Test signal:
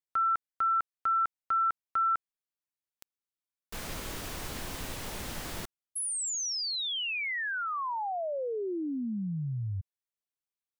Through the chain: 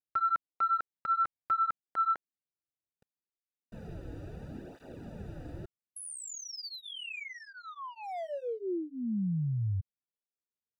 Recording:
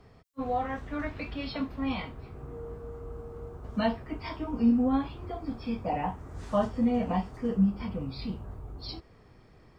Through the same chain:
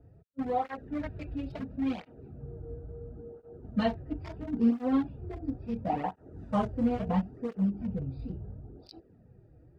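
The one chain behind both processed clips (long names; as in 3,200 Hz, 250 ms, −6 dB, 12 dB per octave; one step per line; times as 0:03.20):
adaptive Wiener filter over 41 samples
through-zero flanger with one copy inverted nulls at 0.73 Hz, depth 5.3 ms
level +3 dB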